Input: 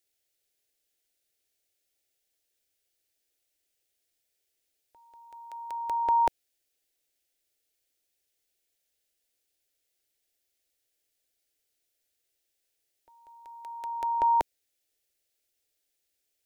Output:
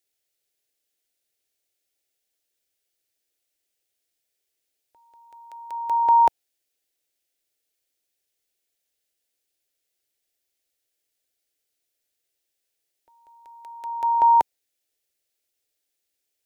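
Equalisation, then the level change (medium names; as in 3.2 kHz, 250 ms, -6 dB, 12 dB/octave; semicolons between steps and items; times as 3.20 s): bass shelf 69 Hz -5.5 dB; dynamic bell 890 Hz, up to +8 dB, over -38 dBFS, Q 2.1; 0.0 dB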